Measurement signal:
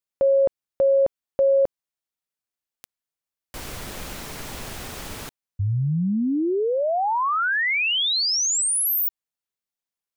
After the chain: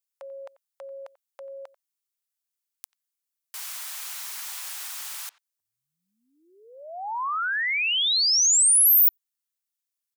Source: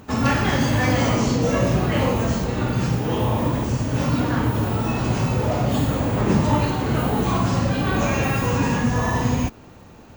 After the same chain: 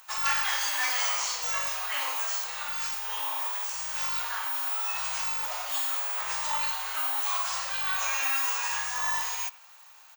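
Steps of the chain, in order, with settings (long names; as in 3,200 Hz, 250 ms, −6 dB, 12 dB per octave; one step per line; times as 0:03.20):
high-pass filter 900 Hz 24 dB per octave
high-shelf EQ 4,300 Hz +12 dB
far-end echo of a speakerphone 90 ms, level −19 dB
level −5.5 dB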